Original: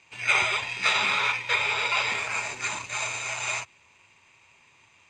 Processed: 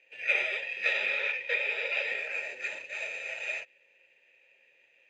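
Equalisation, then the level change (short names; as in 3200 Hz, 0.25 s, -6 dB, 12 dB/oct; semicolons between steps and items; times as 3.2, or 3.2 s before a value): vowel filter e; low shelf 120 Hz -8.5 dB; +6.5 dB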